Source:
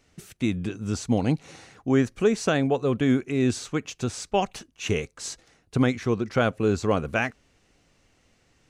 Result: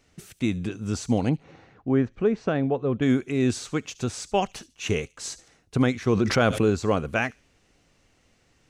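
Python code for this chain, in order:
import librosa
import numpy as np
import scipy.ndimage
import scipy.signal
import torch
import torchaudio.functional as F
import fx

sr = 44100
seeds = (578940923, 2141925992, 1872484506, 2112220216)

y = fx.spacing_loss(x, sr, db_at_10k=33, at=(1.29, 3.02))
y = fx.echo_wet_highpass(y, sr, ms=72, feedback_pct=31, hz=4100.0, wet_db=-16.0)
y = fx.env_flatten(y, sr, amount_pct=70, at=(6.07, 6.7))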